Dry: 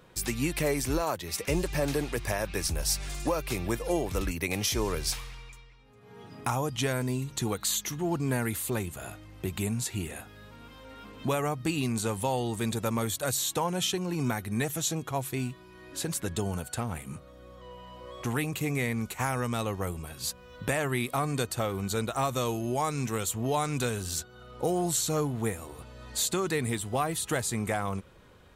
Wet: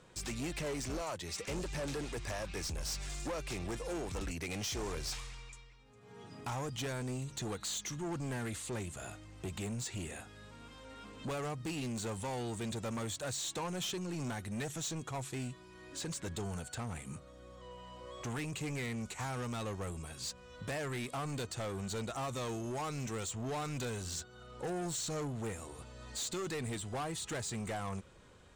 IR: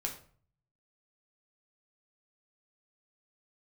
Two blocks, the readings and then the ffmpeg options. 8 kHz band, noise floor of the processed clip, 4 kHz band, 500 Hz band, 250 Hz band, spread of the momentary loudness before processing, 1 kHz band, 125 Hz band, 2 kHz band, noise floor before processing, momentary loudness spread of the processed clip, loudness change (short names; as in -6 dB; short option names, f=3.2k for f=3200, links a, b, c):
-8.5 dB, -56 dBFS, -7.5 dB, -9.5 dB, -9.0 dB, 12 LU, -9.5 dB, -8.0 dB, -8.5 dB, -52 dBFS, 11 LU, -9.0 dB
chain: -filter_complex "[0:a]lowpass=f=7.9k:t=q:w=2.4,acrossover=split=6200[a][b];[b]acompressor=threshold=-44dB:ratio=4:attack=1:release=60[c];[a][c]amix=inputs=2:normalize=0,asoftclip=type=tanh:threshold=-30.5dB,volume=-4dB"